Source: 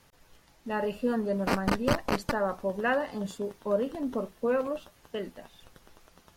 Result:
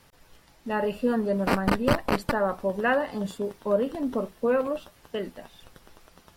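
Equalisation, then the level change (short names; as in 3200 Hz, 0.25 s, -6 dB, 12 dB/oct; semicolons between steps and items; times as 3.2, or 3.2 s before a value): notch 6500 Hz, Q 15; dynamic EQ 5900 Hz, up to -5 dB, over -53 dBFS, Q 1.6; +3.5 dB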